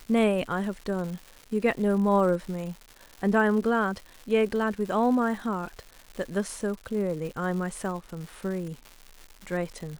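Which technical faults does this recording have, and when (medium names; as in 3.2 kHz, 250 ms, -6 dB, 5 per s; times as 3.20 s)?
crackle 270 per s -36 dBFS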